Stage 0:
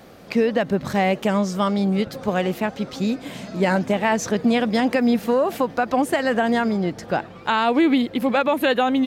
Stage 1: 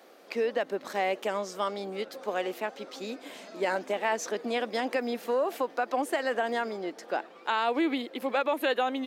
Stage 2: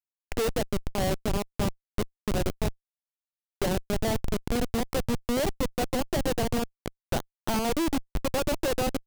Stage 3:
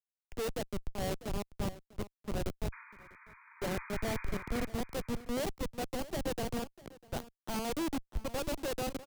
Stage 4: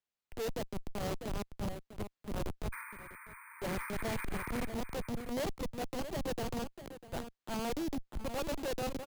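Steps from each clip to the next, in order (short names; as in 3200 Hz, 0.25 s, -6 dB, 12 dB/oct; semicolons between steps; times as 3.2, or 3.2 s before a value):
HPF 310 Hz 24 dB/oct; gain -7.5 dB
Schmitt trigger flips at -26.5 dBFS; dynamic EQ 1600 Hz, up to -5 dB, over -48 dBFS, Q 0.92; gain +6.5 dB
painted sound noise, 2.72–4.66, 870–2500 Hz -38 dBFS; echo 0.648 s -13.5 dB; three-band expander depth 100%; gain -8.5 dB
careless resampling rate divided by 4×, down filtered, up hold; transient shaper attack -7 dB, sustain +2 dB; soft clip -37.5 dBFS, distortion -9 dB; gain +5.5 dB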